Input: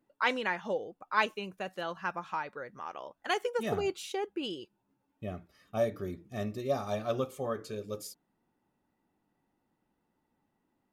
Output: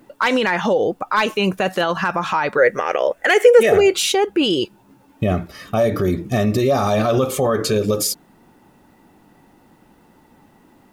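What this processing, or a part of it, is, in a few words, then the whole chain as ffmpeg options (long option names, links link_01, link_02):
loud club master: -filter_complex "[0:a]acompressor=threshold=-36dB:ratio=1.5,asoftclip=type=hard:threshold=-24.5dB,alimiter=level_in=34.5dB:limit=-1dB:release=50:level=0:latency=1,asettb=1/sr,asplit=3[link_01][link_02][link_03];[link_01]atrim=end=2.584[link_04];[link_02]atrim=start=2.58:end=3.94,asetpts=PTS-STARTPTS,afade=type=in:duration=0.004:curve=qsin,afade=type=out:start_time=1.356:duration=0.004:curve=qsin,equalizer=frequency=125:width_type=o:width=1:gain=-7,equalizer=frequency=250:width_type=o:width=1:gain=-7,equalizer=frequency=500:width_type=o:width=1:gain=12,equalizer=frequency=1000:width_type=o:width=1:gain=-10,equalizer=frequency=2000:width_type=o:width=1:gain=11,equalizer=frequency=4000:width_type=o:width=1:gain=-6,equalizer=frequency=8000:width_type=o:width=1:gain=4[link_05];[link_03]atrim=start=3.936[link_06];[link_04][link_05]acrossfade=duration=0.004:curve1=hsin:curve2=qsin[link_07];[link_07][link_06]acrossfade=duration=0.004:curve1=qsin:curve2=hsin,volume=-8.5dB"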